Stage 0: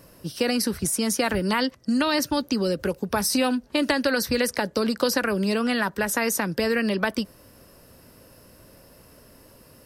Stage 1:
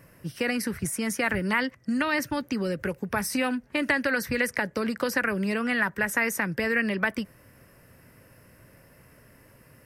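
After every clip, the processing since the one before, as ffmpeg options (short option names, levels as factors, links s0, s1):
-af "equalizer=f=125:t=o:w=1:g=8,equalizer=f=2000:t=o:w=1:g=12,equalizer=f=4000:t=o:w=1:g=-8,volume=0.501"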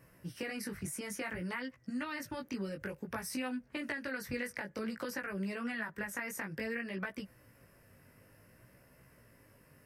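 -af "acompressor=threshold=0.0398:ratio=6,flanger=delay=15.5:depth=5.1:speed=0.56,volume=0.596"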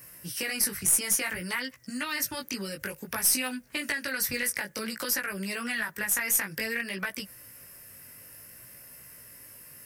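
-filter_complex "[0:a]crystalizer=i=8:c=0,asplit=2[s0][s1];[s1]aeval=exprs='clip(val(0),-1,0.0355)':c=same,volume=0.473[s2];[s0][s2]amix=inputs=2:normalize=0,volume=0.794"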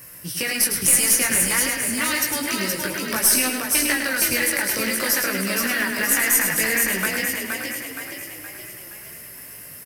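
-filter_complex "[0:a]asplit=2[s0][s1];[s1]aecho=0:1:105|210|315|420|525:0.473|0.194|0.0795|0.0326|0.0134[s2];[s0][s2]amix=inputs=2:normalize=0,acrusher=bits=4:mode=log:mix=0:aa=0.000001,asplit=2[s3][s4];[s4]asplit=7[s5][s6][s7][s8][s9][s10][s11];[s5]adelay=470,afreqshift=38,volume=0.631[s12];[s6]adelay=940,afreqshift=76,volume=0.324[s13];[s7]adelay=1410,afreqshift=114,volume=0.164[s14];[s8]adelay=1880,afreqshift=152,volume=0.0841[s15];[s9]adelay=2350,afreqshift=190,volume=0.0427[s16];[s10]adelay=2820,afreqshift=228,volume=0.0219[s17];[s11]adelay=3290,afreqshift=266,volume=0.0111[s18];[s12][s13][s14][s15][s16][s17][s18]amix=inputs=7:normalize=0[s19];[s3][s19]amix=inputs=2:normalize=0,volume=2.11"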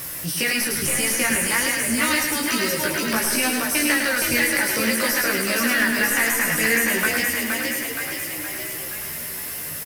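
-filter_complex "[0:a]aeval=exprs='val(0)+0.5*0.0316*sgn(val(0))':c=same,acrossover=split=3500[s0][s1];[s1]acompressor=threshold=0.0794:ratio=4:attack=1:release=60[s2];[s0][s2]amix=inputs=2:normalize=0,asplit=2[s3][s4];[s4]adelay=13,volume=0.562[s5];[s3][s5]amix=inputs=2:normalize=0"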